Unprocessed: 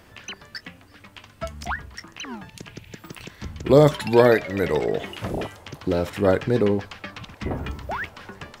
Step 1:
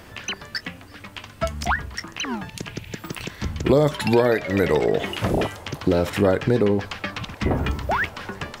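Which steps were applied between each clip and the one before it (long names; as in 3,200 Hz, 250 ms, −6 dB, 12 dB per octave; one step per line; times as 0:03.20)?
downward compressor 5 to 1, threshold −22 dBFS, peak gain reduction 11.5 dB
level +7 dB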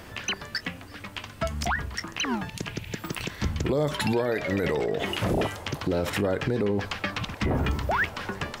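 brickwall limiter −17 dBFS, peak gain reduction 10.5 dB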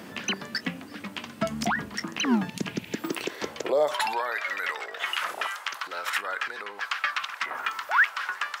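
high-pass filter sweep 210 Hz → 1,300 Hz, 0:02.76–0:04.45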